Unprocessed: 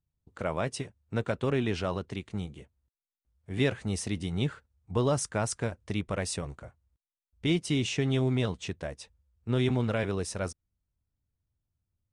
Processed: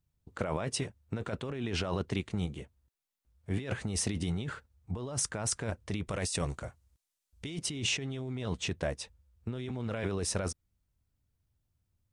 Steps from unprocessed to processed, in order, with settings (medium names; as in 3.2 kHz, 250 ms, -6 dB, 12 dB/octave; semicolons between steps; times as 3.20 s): 6.07–7.59 s: peaking EQ 7.9 kHz +8 dB 2.2 oct; compressor with a negative ratio -34 dBFS, ratio -1